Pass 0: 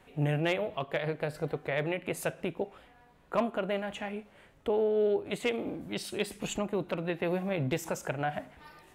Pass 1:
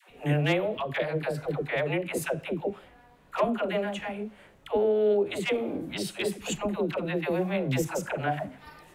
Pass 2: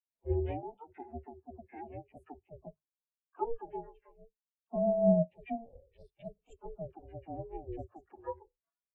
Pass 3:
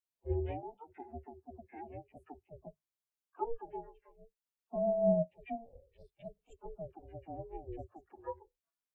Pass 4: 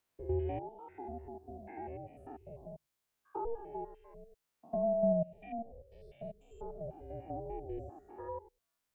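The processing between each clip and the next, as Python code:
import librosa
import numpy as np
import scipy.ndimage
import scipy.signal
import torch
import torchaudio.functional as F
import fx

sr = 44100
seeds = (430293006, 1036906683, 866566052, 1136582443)

y1 = fx.dispersion(x, sr, late='lows', ms=97.0, hz=530.0)
y1 = y1 * librosa.db_to_amplitude(3.5)
y2 = y1 * np.sin(2.0 * np.pi * 230.0 * np.arange(len(y1)) / sr)
y2 = fx.hum_notches(y2, sr, base_hz=50, count=4)
y2 = fx.spectral_expand(y2, sr, expansion=2.5)
y2 = y2 * librosa.db_to_amplitude(-1.5)
y3 = fx.dynamic_eq(y2, sr, hz=200.0, q=0.93, threshold_db=-48.0, ratio=4.0, max_db=-4)
y3 = y3 * librosa.db_to_amplitude(-1.5)
y4 = fx.spec_steps(y3, sr, hold_ms=100)
y4 = fx.band_squash(y4, sr, depth_pct=40)
y4 = y4 * librosa.db_to_amplitude(4.5)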